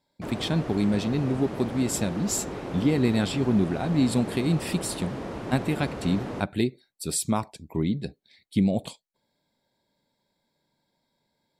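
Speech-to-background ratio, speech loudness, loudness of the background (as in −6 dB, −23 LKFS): 8.5 dB, −27.0 LKFS, −35.5 LKFS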